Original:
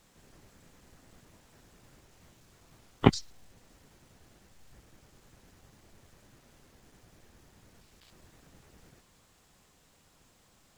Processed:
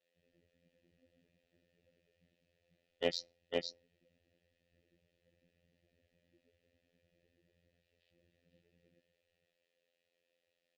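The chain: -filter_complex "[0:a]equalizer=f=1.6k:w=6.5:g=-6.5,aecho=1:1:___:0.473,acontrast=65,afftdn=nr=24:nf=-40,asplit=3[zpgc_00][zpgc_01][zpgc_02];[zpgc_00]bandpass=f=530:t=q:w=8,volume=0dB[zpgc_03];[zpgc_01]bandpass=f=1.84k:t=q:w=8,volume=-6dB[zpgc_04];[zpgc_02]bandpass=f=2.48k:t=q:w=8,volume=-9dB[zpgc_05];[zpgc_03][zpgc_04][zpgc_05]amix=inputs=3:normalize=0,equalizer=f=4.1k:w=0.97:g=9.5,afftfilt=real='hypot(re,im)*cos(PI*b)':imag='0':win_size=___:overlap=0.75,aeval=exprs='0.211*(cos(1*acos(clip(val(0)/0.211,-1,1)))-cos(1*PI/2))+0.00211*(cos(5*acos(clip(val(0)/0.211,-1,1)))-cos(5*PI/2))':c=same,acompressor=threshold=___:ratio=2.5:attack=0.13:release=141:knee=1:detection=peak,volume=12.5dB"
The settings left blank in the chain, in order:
502, 2048, -38dB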